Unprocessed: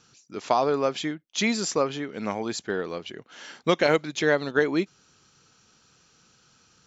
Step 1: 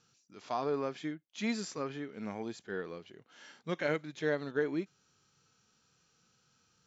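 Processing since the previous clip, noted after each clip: harmonic-percussive split percussive -12 dB; dynamic bell 1.7 kHz, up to +5 dB, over -48 dBFS, Q 2.1; trim -7.5 dB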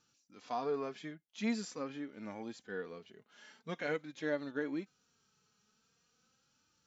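flange 0.45 Hz, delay 3.3 ms, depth 1.6 ms, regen +33%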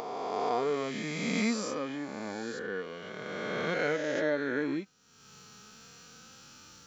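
reverse spectral sustain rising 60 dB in 2.88 s; upward compressor, threshold -42 dBFS; trim +3 dB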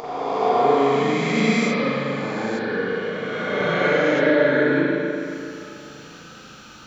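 spring tank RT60 2.7 s, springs 36/43 ms, chirp 20 ms, DRR -9 dB; trim +3 dB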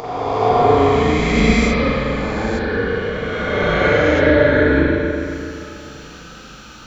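octave divider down 2 oct, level -2 dB; trim +4 dB

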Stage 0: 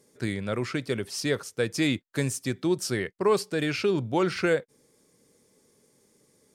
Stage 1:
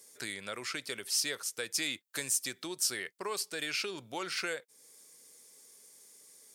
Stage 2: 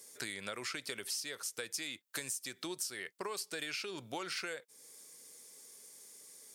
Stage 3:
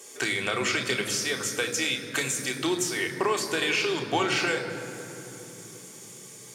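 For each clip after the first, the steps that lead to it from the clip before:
bass shelf 300 Hz -7 dB; compression 2:1, threshold -40 dBFS, peak gain reduction 11 dB; tilt EQ +3.5 dB/octave
compression 12:1, threshold -38 dBFS, peak gain reduction 13 dB; trim +2 dB
reverberation RT60 3.6 s, pre-delay 3 ms, DRR 2.5 dB; trim +5.5 dB

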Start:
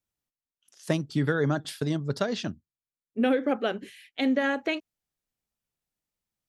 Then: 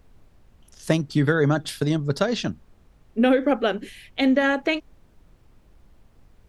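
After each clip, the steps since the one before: added noise brown -57 dBFS; trim +5.5 dB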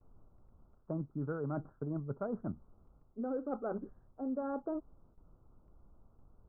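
steep low-pass 1.4 kHz 96 dB/octave; gate with hold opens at -46 dBFS; reverse; compression 6:1, threshold -27 dBFS, peak gain reduction 12.5 dB; reverse; trim -7.5 dB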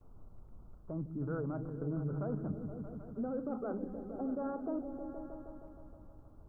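peak limiter -36 dBFS, peak gain reduction 11.5 dB; on a send: delay with an opening low-pass 157 ms, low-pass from 200 Hz, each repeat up 1 oct, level -3 dB; on the sum: trim +5 dB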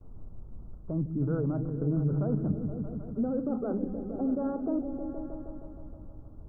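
tilt shelf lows +6.5 dB, about 710 Hz; trim +3.5 dB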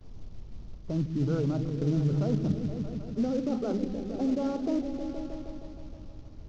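CVSD coder 32 kbps; trim +1.5 dB

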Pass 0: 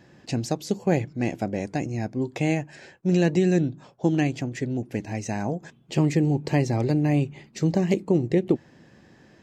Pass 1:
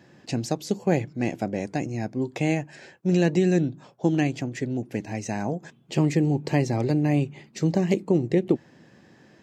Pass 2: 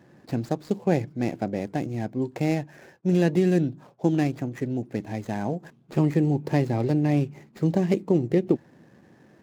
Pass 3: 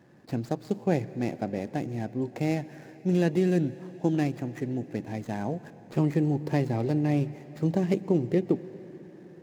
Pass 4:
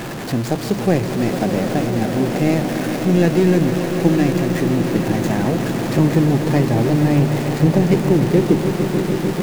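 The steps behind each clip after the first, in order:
high-pass 100 Hz
median filter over 15 samples
plate-style reverb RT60 4.9 s, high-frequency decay 0.85×, pre-delay 105 ms, DRR 16 dB; trim -3 dB
jump at every zero crossing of -30 dBFS; echo with a slow build-up 149 ms, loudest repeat 5, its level -12 dB; trim +7.5 dB

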